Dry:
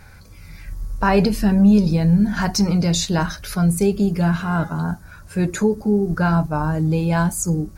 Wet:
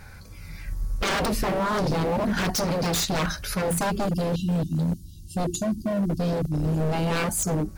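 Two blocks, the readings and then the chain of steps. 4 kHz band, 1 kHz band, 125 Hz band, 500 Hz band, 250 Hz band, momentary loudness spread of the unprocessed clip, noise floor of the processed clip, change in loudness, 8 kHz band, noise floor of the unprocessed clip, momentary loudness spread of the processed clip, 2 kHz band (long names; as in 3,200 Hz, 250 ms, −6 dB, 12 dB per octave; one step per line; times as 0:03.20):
−1.5 dB, −4.0 dB, −7.5 dB, −4.0 dB, −9.0 dB, 10 LU, −43 dBFS, −7.0 dB, −2.0 dB, −43 dBFS, 10 LU, −3.5 dB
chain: time-frequency box erased 0:04.06–0:06.91, 370–2,700 Hz
wave folding −19.5 dBFS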